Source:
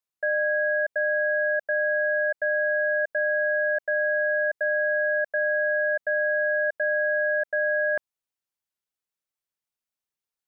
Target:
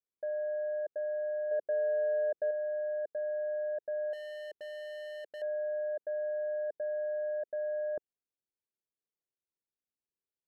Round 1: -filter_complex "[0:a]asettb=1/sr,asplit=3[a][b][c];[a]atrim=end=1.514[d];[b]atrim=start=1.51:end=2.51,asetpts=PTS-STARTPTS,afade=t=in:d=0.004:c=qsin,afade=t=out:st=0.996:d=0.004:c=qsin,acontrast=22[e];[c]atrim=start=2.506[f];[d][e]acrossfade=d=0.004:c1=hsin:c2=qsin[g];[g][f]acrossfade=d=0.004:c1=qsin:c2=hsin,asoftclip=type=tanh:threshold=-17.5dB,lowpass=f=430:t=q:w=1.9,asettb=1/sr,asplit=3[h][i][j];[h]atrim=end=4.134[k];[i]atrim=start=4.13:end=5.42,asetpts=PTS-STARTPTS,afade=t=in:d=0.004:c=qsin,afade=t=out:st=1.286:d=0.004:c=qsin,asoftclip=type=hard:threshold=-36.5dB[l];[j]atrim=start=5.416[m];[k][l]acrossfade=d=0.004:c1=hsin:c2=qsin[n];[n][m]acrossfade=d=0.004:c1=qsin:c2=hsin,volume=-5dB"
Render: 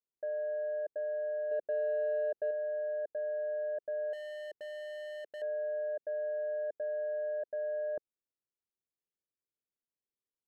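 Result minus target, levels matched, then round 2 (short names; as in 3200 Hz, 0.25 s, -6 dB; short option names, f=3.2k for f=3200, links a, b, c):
soft clip: distortion +10 dB
-filter_complex "[0:a]asettb=1/sr,asplit=3[a][b][c];[a]atrim=end=1.514[d];[b]atrim=start=1.51:end=2.51,asetpts=PTS-STARTPTS,afade=t=in:d=0.004:c=qsin,afade=t=out:st=0.996:d=0.004:c=qsin,acontrast=22[e];[c]atrim=start=2.506[f];[d][e]acrossfade=d=0.004:c1=hsin:c2=qsin[g];[g][f]acrossfade=d=0.004:c1=qsin:c2=hsin,asoftclip=type=tanh:threshold=-11dB,lowpass=f=430:t=q:w=1.9,asettb=1/sr,asplit=3[h][i][j];[h]atrim=end=4.134[k];[i]atrim=start=4.13:end=5.42,asetpts=PTS-STARTPTS,afade=t=in:d=0.004:c=qsin,afade=t=out:st=1.286:d=0.004:c=qsin,asoftclip=type=hard:threshold=-36.5dB[l];[j]atrim=start=5.416[m];[k][l]acrossfade=d=0.004:c1=hsin:c2=qsin[n];[n][m]acrossfade=d=0.004:c1=qsin:c2=hsin,volume=-5dB"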